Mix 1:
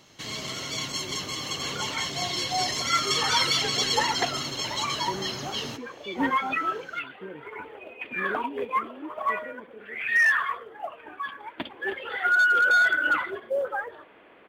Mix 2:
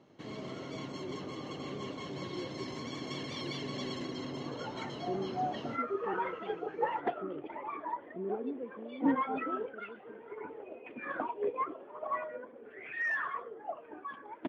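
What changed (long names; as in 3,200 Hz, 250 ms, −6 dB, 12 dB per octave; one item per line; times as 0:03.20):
second sound: entry +2.85 s
master: add resonant band-pass 320 Hz, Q 0.77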